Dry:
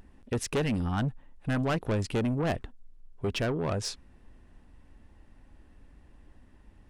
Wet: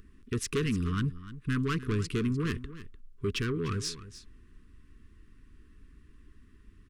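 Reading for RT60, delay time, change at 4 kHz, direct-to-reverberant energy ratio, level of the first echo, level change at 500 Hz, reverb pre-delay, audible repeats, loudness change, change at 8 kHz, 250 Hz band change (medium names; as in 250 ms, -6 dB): no reverb, 299 ms, 0.0 dB, no reverb, -15.0 dB, -3.5 dB, no reverb, 1, -1.5 dB, 0.0 dB, -0.5 dB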